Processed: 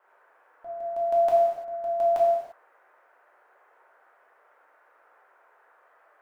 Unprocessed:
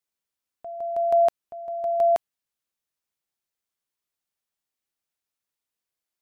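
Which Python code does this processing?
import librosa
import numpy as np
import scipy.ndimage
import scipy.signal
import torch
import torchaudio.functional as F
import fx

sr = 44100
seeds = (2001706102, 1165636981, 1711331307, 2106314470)

y = fx.dmg_noise_band(x, sr, seeds[0], low_hz=440.0, high_hz=1700.0, level_db=-61.0)
y = fx.rev_gated(y, sr, seeds[1], gate_ms=370, shape='falling', drr_db=-5.0)
y = F.gain(torch.from_numpy(y), -6.0).numpy()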